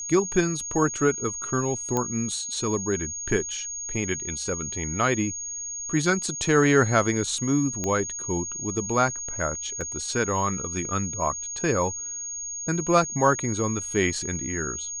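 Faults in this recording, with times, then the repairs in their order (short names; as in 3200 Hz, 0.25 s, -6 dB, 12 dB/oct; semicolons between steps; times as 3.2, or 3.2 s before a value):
tone 6600 Hz -31 dBFS
1.97 pop -12 dBFS
7.84 pop -14 dBFS
9.81 gap 2.2 ms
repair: de-click; notch 6600 Hz, Q 30; interpolate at 9.81, 2.2 ms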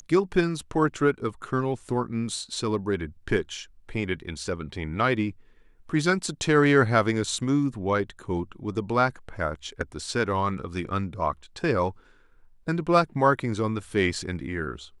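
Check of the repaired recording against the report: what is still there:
1.97 pop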